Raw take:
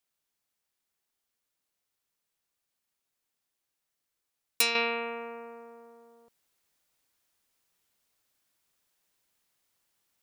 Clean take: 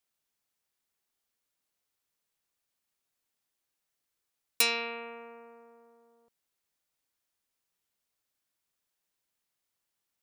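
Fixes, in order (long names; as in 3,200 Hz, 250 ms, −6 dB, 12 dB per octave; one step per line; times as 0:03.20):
level 0 dB, from 0:04.75 −7.5 dB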